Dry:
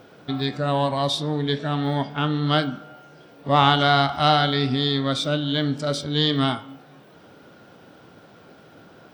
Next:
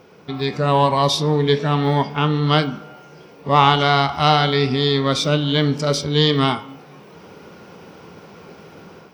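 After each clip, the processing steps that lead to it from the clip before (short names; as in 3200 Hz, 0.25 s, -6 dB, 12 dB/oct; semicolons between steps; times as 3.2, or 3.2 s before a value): ripple EQ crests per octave 0.81, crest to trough 7 dB; AGC gain up to 7 dB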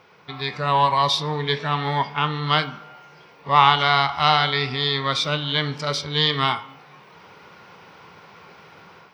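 graphic EQ 125/250/1000/2000/4000 Hz +4/-4/+9/+9/+8 dB; gain -10 dB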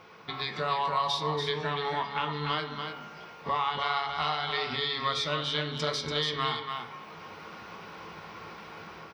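compressor 4:1, threshold -30 dBFS, peak gain reduction 17 dB; echo 0.288 s -6 dB; on a send at -6.5 dB: reverb RT60 0.35 s, pre-delay 3 ms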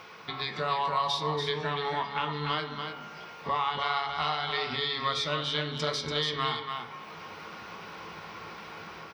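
mismatched tape noise reduction encoder only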